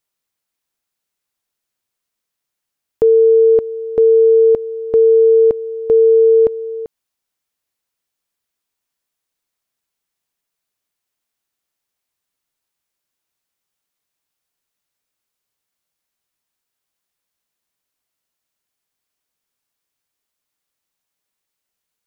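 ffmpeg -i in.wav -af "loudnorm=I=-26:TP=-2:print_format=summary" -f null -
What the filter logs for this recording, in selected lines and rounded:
Input Integrated:    -12.1 LUFS
Input True Peak:      -6.4 dBTP
Input LRA:             4.9 LU
Input Threshold:     -22.6 LUFS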